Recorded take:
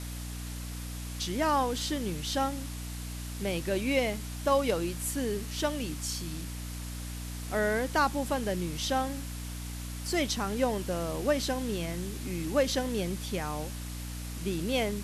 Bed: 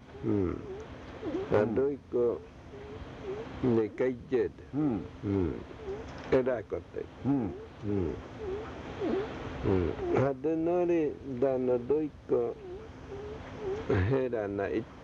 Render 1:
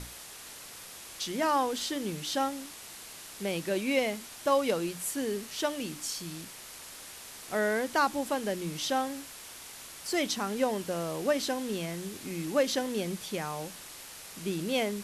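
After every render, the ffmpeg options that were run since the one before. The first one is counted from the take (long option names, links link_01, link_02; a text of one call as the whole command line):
ffmpeg -i in.wav -af "bandreject=frequency=60:width_type=h:width=6,bandreject=frequency=120:width_type=h:width=6,bandreject=frequency=180:width_type=h:width=6,bandreject=frequency=240:width_type=h:width=6,bandreject=frequency=300:width_type=h:width=6" out.wav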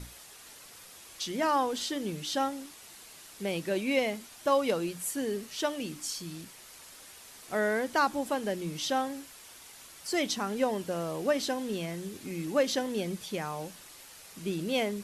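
ffmpeg -i in.wav -af "afftdn=noise_reduction=6:noise_floor=-47" out.wav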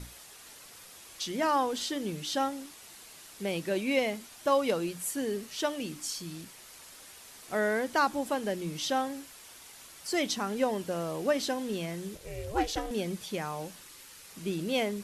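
ffmpeg -i in.wav -filter_complex "[0:a]asettb=1/sr,asplit=3[link_01][link_02][link_03];[link_01]atrim=end=12.154[link_04];[link_02]atrim=start=12.15:end=12.91,asetpts=PTS-STARTPTS,afade=type=in:duration=0.004:curve=qsin,afade=type=out:start_time=0.756:duration=0.004:curve=qsin,aeval=exprs='val(0)*sin(2*PI*220*n/s)':channel_layout=same[link_05];[link_03]atrim=start=12.906[link_06];[link_04][link_05]acrossfade=duration=0.004:curve1=hsin:curve2=qsin[link_07];[link_07][link_06]acrossfade=duration=0.004:curve1=qsin:curve2=hsin,asettb=1/sr,asplit=3[link_08][link_09][link_10];[link_08]atrim=end=13.814[link_11];[link_09]atrim=start=13.81:end=14.3,asetpts=PTS-STARTPTS,afade=type=in:duration=0.004:curve=qsin,afade=type=out:start_time=0.486:duration=0.004:curve=qsin,equalizer=frequency=690:width=4:gain=-12[link_12];[link_10]atrim=start=14.296[link_13];[link_11][link_12]acrossfade=duration=0.004:curve1=hsin:curve2=qsin[link_14];[link_14][link_13]acrossfade=duration=0.004:curve1=qsin:curve2=hsin" out.wav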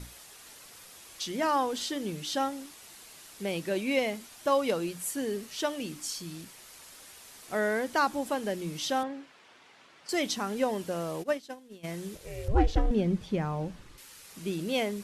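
ffmpeg -i in.wav -filter_complex "[0:a]asettb=1/sr,asplit=3[link_01][link_02][link_03];[link_01]atrim=end=9.034[link_04];[link_02]atrim=start=9.03:end=10.09,asetpts=PTS-STARTPTS,afade=type=in:duration=0.004:curve=qsin,afade=type=out:start_time=1.056:duration=0.004:curve=qsin,highpass=160,lowpass=2800[link_05];[link_03]atrim=start=10.086[link_06];[link_04][link_05]acrossfade=duration=0.004:curve1=hsin:curve2=qsin[link_07];[link_07][link_06]acrossfade=duration=0.004:curve1=qsin:curve2=hsin,asplit=3[link_08][link_09][link_10];[link_08]afade=type=out:start_time=11.22:duration=0.02[link_11];[link_09]agate=range=-33dB:threshold=-23dB:ratio=3:release=100:detection=peak,afade=type=in:start_time=11.22:duration=0.02,afade=type=out:start_time=11.83:duration=0.02[link_12];[link_10]afade=type=in:start_time=11.83:duration=0.02[link_13];[link_11][link_12][link_13]amix=inputs=3:normalize=0,asettb=1/sr,asplit=3[link_14][link_15][link_16];[link_14]atrim=end=12.484[link_17];[link_15]atrim=start=12.48:end=13.98,asetpts=PTS-STARTPTS,afade=type=in:duration=0.004:curve=qsin,afade=type=out:start_time=1.496:duration=0.004:curve=qsin,aemphasis=mode=reproduction:type=riaa[link_18];[link_16]atrim=start=13.976[link_19];[link_17][link_18]acrossfade=duration=0.004:curve1=hsin:curve2=qsin[link_20];[link_20][link_19]acrossfade=duration=0.004:curve1=qsin:curve2=hsin" out.wav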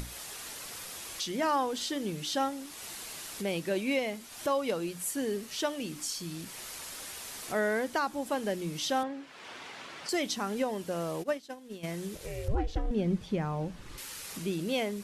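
ffmpeg -i in.wav -af "acompressor=mode=upward:threshold=-33dB:ratio=2.5,alimiter=limit=-19.5dB:level=0:latency=1:release=396" out.wav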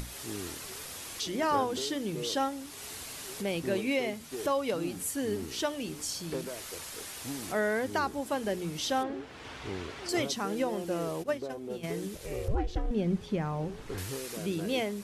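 ffmpeg -i in.wav -i bed.wav -filter_complex "[1:a]volume=-11dB[link_01];[0:a][link_01]amix=inputs=2:normalize=0" out.wav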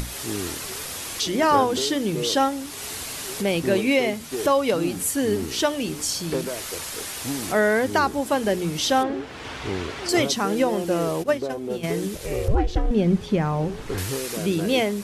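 ffmpeg -i in.wav -af "volume=9.5dB" out.wav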